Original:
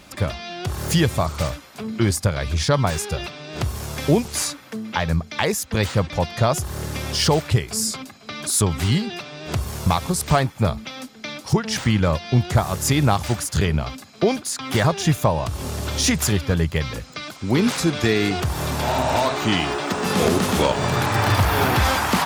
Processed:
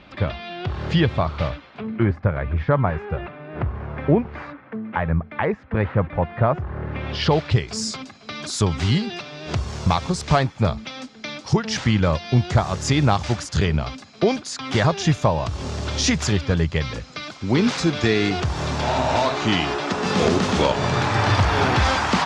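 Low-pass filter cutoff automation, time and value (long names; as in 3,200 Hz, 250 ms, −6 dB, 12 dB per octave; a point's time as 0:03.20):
low-pass filter 24 dB per octave
0:01.68 3,700 Hz
0:02.10 2,000 Hz
0:06.85 2,000 Hz
0:07.17 3,700 Hz
0:07.78 6,500 Hz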